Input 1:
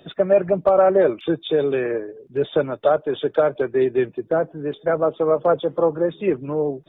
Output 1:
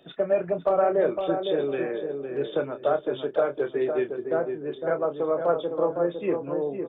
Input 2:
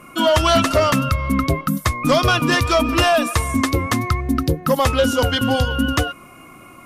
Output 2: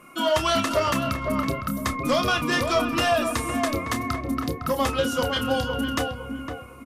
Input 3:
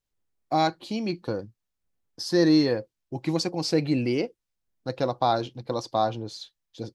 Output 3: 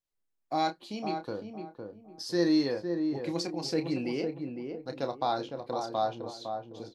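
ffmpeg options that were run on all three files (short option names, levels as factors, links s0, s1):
-filter_complex "[0:a]equalizer=f=67:t=o:w=2.1:g=-9,asplit=2[s0][s1];[s1]adelay=29,volume=0.355[s2];[s0][s2]amix=inputs=2:normalize=0,asplit=2[s3][s4];[s4]adelay=508,lowpass=f=1100:p=1,volume=0.562,asplit=2[s5][s6];[s6]adelay=508,lowpass=f=1100:p=1,volume=0.31,asplit=2[s7][s8];[s8]adelay=508,lowpass=f=1100:p=1,volume=0.31,asplit=2[s9][s10];[s10]adelay=508,lowpass=f=1100:p=1,volume=0.31[s11];[s3][s5][s7][s9][s11]amix=inputs=5:normalize=0,volume=0.473"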